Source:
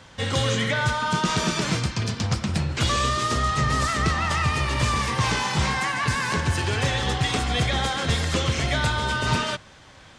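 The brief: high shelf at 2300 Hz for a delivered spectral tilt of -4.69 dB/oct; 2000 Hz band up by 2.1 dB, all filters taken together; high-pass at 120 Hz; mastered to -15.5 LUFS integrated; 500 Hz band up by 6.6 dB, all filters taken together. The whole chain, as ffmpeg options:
-af "highpass=120,equalizer=f=500:t=o:g=8,equalizer=f=2k:t=o:g=5,highshelf=f=2.3k:g=-6,volume=7.5dB"

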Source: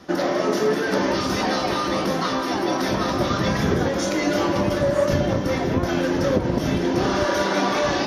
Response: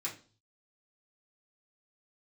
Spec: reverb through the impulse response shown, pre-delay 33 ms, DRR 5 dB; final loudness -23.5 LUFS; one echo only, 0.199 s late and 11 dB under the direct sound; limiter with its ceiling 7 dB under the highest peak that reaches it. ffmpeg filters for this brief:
-filter_complex "[0:a]alimiter=limit=-13.5dB:level=0:latency=1,aecho=1:1:199:0.282,asplit=2[a][b];[1:a]atrim=start_sample=2205,adelay=33[c];[b][c]afir=irnorm=-1:irlink=0,volume=-6.5dB[d];[a][d]amix=inputs=2:normalize=0,volume=-2dB"

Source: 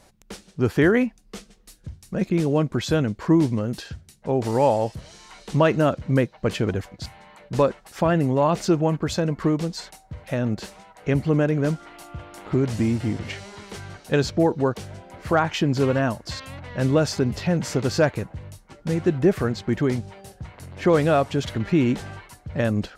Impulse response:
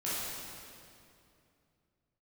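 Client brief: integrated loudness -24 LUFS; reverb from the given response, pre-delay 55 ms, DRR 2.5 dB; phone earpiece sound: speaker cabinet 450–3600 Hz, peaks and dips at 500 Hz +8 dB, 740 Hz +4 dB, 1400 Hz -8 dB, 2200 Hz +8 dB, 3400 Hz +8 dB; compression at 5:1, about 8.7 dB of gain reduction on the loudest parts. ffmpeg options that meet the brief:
-filter_complex "[0:a]acompressor=threshold=-23dB:ratio=5,asplit=2[a][b];[1:a]atrim=start_sample=2205,adelay=55[c];[b][c]afir=irnorm=-1:irlink=0,volume=-8.5dB[d];[a][d]amix=inputs=2:normalize=0,highpass=450,equalizer=f=500:t=q:w=4:g=8,equalizer=f=740:t=q:w=4:g=4,equalizer=f=1.4k:t=q:w=4:g=-8,equalizer=f=2.2k:t=q:w=4:g=8,equalizer=f=3.4k:t=q:w=4:g=8,lowpass=f=3.6k:w=0.5412,lowpass=f=3.6k:w=1.3066,volume=5dB"

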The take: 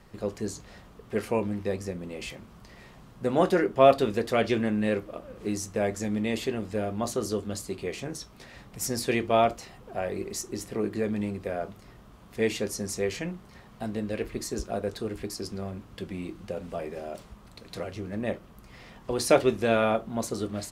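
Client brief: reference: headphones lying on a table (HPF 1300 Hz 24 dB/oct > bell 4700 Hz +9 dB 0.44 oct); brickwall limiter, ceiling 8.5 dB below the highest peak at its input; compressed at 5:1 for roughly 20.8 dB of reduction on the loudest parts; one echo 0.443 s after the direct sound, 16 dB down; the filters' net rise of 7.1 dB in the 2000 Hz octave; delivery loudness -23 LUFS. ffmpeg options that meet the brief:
-af "equalizer=f=2k:t=o:g=9,acompressor=threshold=-36dB:ratio=5,alimiter=level_in=4dB:limit=-24dB:level=0:latency=1,volume=-4dB,highpass=f=1.3k:w=0.5412,highpass=f=1.3k:w=1.3066,equalizer=f=4.7k:t=o:w=0.44:g=9,aecho=1:1:443:0.158,volume=20.5dB"

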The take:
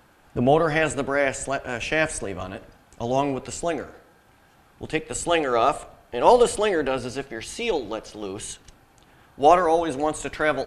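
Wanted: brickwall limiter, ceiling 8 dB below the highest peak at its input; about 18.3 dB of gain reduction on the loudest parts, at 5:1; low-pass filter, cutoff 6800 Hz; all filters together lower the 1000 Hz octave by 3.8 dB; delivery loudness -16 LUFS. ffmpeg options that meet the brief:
-af "lowpass=6.8k,equalizer=f=1k:t=o:g=-5.5,acompressor=threshold=-34dB:ratio=5,volume=24dB,alimiter=limit=-4dB:level=0:latency=1"

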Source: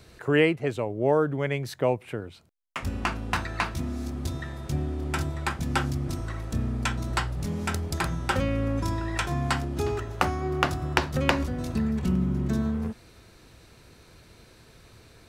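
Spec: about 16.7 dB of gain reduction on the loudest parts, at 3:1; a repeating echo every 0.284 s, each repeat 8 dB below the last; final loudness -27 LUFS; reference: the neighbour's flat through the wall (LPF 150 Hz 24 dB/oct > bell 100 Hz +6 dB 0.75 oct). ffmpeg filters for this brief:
-af "acompressor=threshold=-43dB:ratio=3,lowpass=f=150:w=0.5412,lowpass=f=150:w=1.3066,equalizer=f=100:t=o:w=0.75:g=6,aecho=1:1:284|568|852|1136|1420:0.398|0.159|0.0637|0.0255|0.0102,volume=17.5dB"

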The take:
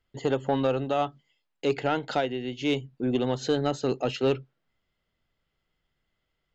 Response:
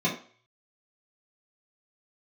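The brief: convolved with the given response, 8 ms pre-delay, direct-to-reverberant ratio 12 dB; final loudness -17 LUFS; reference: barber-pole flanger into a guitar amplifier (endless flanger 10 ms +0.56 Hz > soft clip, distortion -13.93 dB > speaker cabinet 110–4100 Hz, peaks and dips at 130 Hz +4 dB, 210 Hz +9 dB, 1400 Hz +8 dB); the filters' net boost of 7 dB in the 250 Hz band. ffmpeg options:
-filter_complex "[0:a]equalizer=f=250:t=o:g=5.5,asplit=2[a][b];[1:a]atrim=start_sample=2205,adelay=8[c];[b][c]afir=irnorm=-1:irlink=0,volume=-23dB[d];[a][d]amix=inputs=2:normalize=0,asplit=2[e][f];[f]adelay=10,afreqshift=0.56[g];[e][g]amix=inputs=2:normalize=1,asoftclip=threshold=-22dB,highpass=110,equalizer=f=130:t=q:w=4:g=4,equalizer=f=210:t=q:w=4:g=9,equalizer=f=1.4k:t=q:w=4:g=8,lowpass=f=4.1k:w=0.5412,lowpass=f=4.1k:w=1.3066,volume=12.5dB"

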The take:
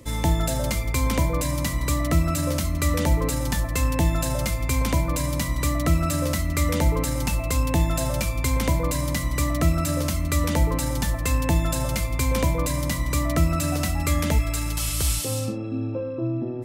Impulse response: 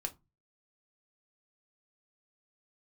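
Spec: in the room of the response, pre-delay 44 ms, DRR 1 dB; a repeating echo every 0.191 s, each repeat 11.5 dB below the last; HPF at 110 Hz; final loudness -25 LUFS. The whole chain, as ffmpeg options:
-filter_complex "[0:a]highpass=110,aecho=1:1:191|382|573:0.266|0.0718|0.0194,asplit=2[a][b];[1:a]atrim=start_sample=2205,adelay=44[c];[b][c]afir=irnorm=-1:irlink=0,volume=-1dB[d];[a][d]amix=inputs=2:normalize=0,volume=-2dB"

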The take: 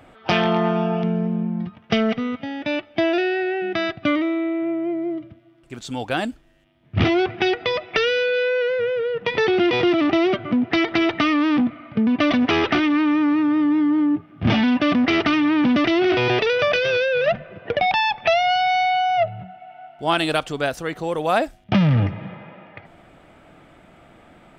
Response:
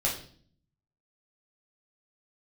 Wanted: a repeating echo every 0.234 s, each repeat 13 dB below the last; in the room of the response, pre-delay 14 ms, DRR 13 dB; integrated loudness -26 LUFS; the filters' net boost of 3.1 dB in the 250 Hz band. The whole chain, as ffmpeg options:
-filter_complex "[0:a]equalizer=f=250:t=o:g=4,aecho=1:1:234|468|702:0.224|0.0493|0.0108,asplit=2[a][b];[1:a]atrim=start_sample=2205,adelay=14[c];[b][c]afir=irnorm=-1:irlink=0,volume=-21dB[d];[a][d]amix=inputs=2:normalize=0,volume=-7.5dB"

